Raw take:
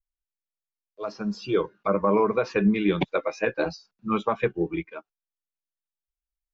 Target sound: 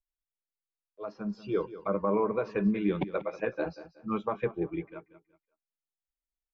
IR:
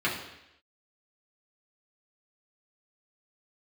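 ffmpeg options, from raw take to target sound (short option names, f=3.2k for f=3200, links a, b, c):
-af "lowpass=f=1.5k:p=1,aecho=1:1:186|372|558:0.178|0.0533|0.016,volume=-5.5dB"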